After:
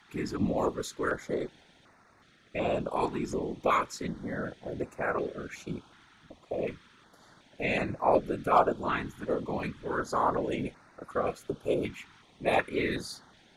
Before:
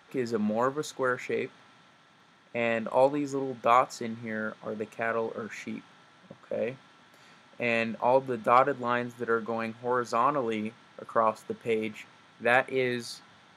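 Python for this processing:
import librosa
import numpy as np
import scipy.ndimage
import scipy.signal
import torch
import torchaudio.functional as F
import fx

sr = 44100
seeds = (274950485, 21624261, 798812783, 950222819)

y = fx.whisperise(x, sr, seeds[0])
y = fx.filter_held_notch(y, sr, hz=2.7, low_hz=560.0, high_hz=3200.0)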